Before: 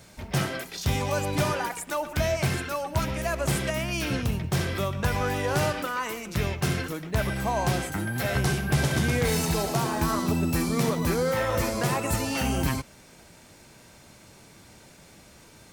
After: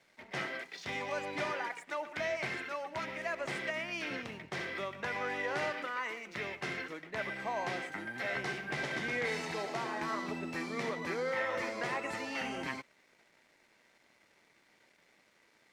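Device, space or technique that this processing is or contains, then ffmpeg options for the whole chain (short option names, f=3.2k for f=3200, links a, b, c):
pocket radio on a weak battery: -af "highpass=300,lowpass=4.4k,aeval=exprs='sgn(val(0))*max(abs(val(0))-0.00133,0)':c=same,equalizer=f=2k:t=o:w=0.41:g=9.5,volume=-8.5dB"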